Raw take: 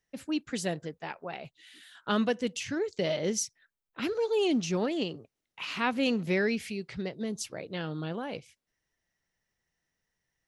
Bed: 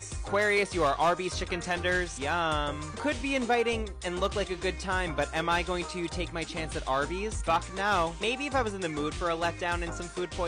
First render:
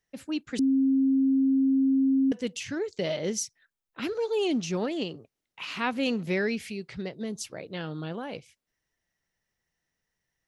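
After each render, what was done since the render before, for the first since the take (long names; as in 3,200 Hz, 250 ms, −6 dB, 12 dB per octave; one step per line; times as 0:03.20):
0:00.59–0:02.32: beep over 268 Hz −19.5 dBFS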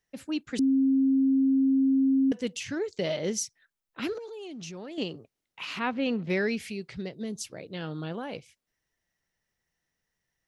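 0:04.18–0:04.98: output level in coarse steps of 20 dB
0:05.79–0:06.30: high-frequency loss of the air 210 metres
0:06.91–0:07.82: parametric band 1,100 Hz −5 dB 2 octaves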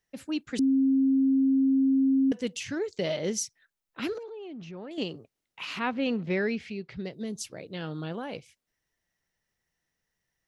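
0:04.23–0:04.91: low-pass filter 2,300 Hz
0:06.29–0:07.05: high-frequency loss of the air 150 metres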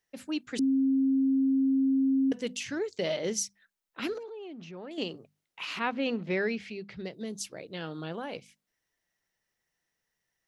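low-shelf EQ 170 Hz −7.5 dB
mains-hum notches 50/100/150/200/250 Hz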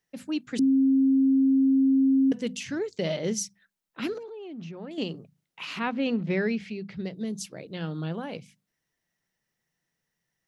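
parametric band 160 Hz +10 dB 1.3 octaves
mains-hum notches 60/120/180 Hz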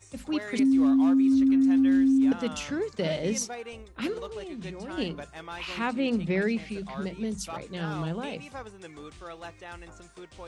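mix in bed −12.5 dB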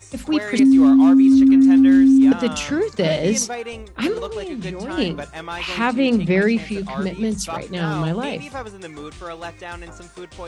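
level +9.5 dB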